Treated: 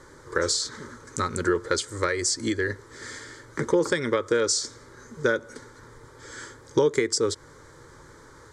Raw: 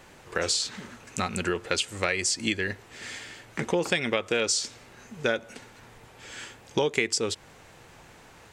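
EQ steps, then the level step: low-pass 8.7 kHz 12 dB/octave; peaking EQ 180 Hz +11 dB 0.94 oct; static phaser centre 720 Hz, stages 6; +4.5 dB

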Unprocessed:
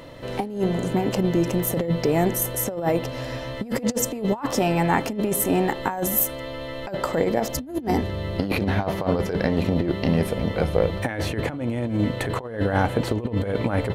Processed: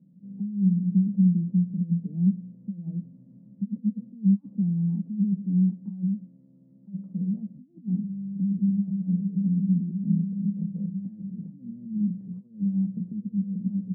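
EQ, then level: Butterworth band-pass 190 Hz, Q 6; +6.0 dB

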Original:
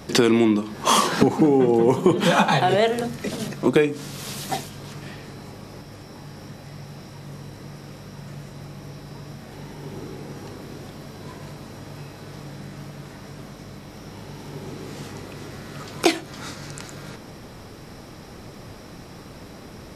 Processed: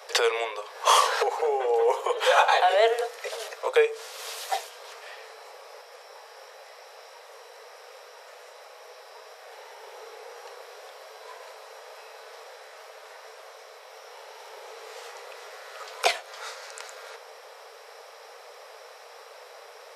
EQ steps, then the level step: steep high-pass 440 Hz 96 dB/octave; treble shelf 4.6 kHz -5 dB; 0.0 dB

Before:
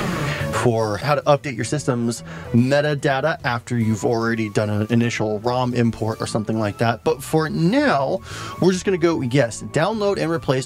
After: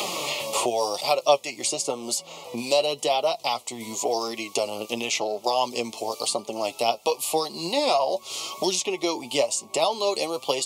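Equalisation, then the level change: Bessel high-pass 1 kHz, order 2; Butterworth band-stop 1.6 kHz, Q 0.94; +5.0 dB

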